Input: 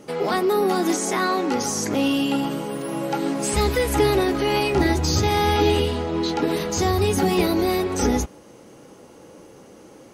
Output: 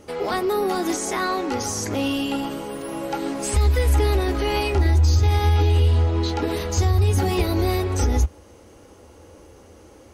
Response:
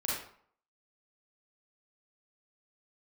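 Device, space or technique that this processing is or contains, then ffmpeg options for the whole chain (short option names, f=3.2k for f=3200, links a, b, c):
car stereo with a boomy subwoofer: -af "lowshelf=f=110:t=q:w=3:g=9.5,alimiter=limit=-9dB:level=0:latency=1:release=137,volume=-1.5dB"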